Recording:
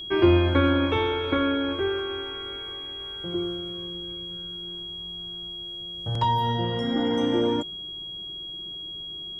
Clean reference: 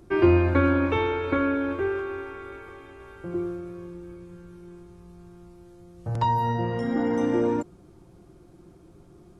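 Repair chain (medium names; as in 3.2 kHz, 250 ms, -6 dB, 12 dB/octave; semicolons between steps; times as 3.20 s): band-stop 3.3 kHz, Q 30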